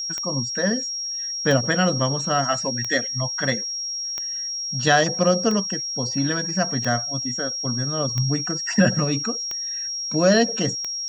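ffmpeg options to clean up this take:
ffmpeg -i in.wav -af "adeclick=threshold=4,bandreject=frequency=5600:width=30" out.wav

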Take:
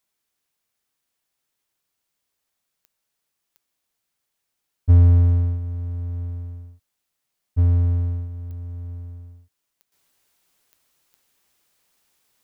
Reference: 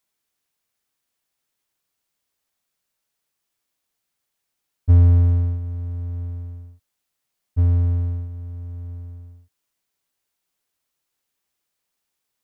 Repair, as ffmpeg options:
ffmpeg -i in.wav -af "adeclick=threshold=4,asetnsamples=nb_out_samples=441:pad=0,asendcmd='9.92 volume volume -11dB',volume=0dB" out.wav

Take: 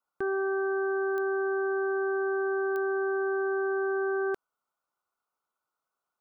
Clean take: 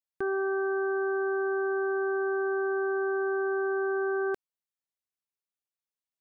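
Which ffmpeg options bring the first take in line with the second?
ffmpeg -i in.wav -af "adeclick=threshold=4,afftdn=noise_reduction=6:noise_floor=-80" out.wav

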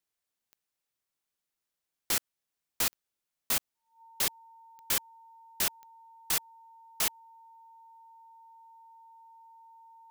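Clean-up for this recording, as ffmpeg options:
ffmpeg -i in.wav -af "adeclick=threshold=4,bandreject=frequency=910:width=30" out.wav

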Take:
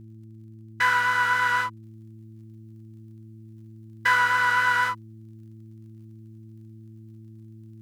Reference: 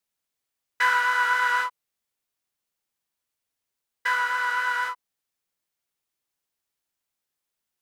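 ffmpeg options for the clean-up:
ffmpeg -i in.wav -af "adeclick=threshold=4,bandreject=frequency=110.4:width_type=h:width=4,bandreject=frequency=220.8:width_type=h:width=4,bandreject=frequency=331.2:width_type=h:width=4,asetnsamples=nb_out_samples=441:pad=0,asendcmd='1.83 volume volume -4dB',volume=0dB" out.wav

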